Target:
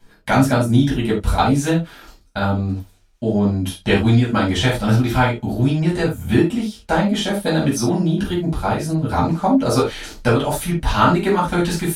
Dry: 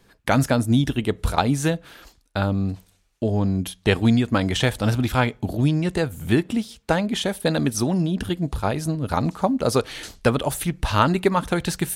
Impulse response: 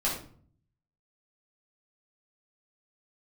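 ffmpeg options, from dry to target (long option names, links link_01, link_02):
-filter_complex "[1:a]atrim=start_sample=2205,afade=type=out:start_time=0.16:duration=0.01,atrim=end_sample=7497,asetrate=52920,aresample=44100[link_01];[0:a][link_01]afir=irnorm=-1:irlink=0,volume=-3dB"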